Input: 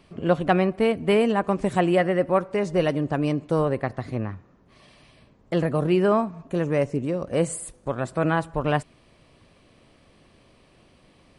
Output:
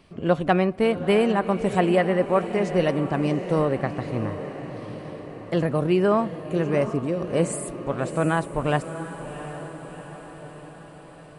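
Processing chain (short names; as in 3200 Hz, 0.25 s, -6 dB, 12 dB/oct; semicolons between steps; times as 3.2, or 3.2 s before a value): diffused feedback echo 0.715 s, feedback 60%, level -11 dB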